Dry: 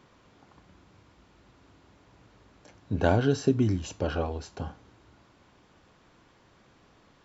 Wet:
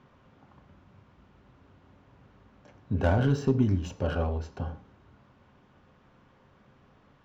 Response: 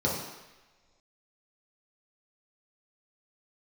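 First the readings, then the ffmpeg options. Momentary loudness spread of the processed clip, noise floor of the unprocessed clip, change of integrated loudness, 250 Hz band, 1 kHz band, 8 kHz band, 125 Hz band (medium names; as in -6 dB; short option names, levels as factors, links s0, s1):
13 LU, -61 dBFS, 0.0 dB, -0.5 dB, -2.0 dB, no reading, +2.0 dB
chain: -filter_complex "[0:a]asoftclip=type=tanh:threshold=0.188,adynamicsmooth=sensitivity=5.5:basefreq=3700,asplit=2[s0][s1];[1:a]atrim=start_sample=2205,afade=t=out:st=0.18:d=0.01,atrim=end_sample=8379[s2];[s1][s2]afir=irnorm=-1:irlink=0,volume=0.1[s3];[s0][s3]amix=inputs=2:normalize=0"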